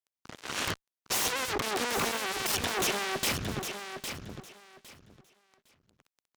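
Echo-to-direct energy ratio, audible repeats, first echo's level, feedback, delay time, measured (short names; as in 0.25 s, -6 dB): -8.0 dB, 2, -8.0 dB, 20%, 0.808 s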